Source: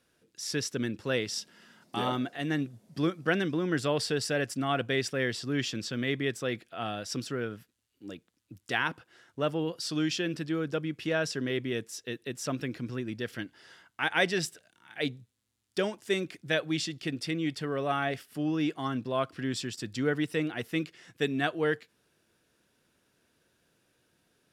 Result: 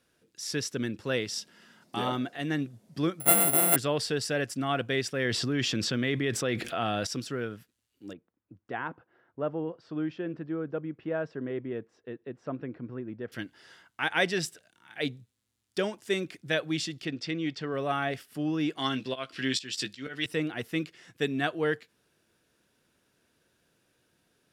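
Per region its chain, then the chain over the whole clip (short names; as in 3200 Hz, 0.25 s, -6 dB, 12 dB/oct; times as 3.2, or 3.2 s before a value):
3.2–3.76 sample sorter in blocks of 64 samples + LPF 3900 Hz 24 dB/oct + careless resampling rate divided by 4×, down filtered, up zero stuff
5.25–7.07 high shelf 6300 Hz -5.5 dB + fast leveller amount 70%
8.13–13.32 LPF 1100 Hz + low shelf 230 Hz -6 dB
17.05–17.74 LPF 6400 Hz 24 dB/oct + bell 78 Hz -4 dB 2 oct
18.77–20.26 weighting filter D + auto swell 0.226 s + doubler 15 ms -7 dB
whole clip: dry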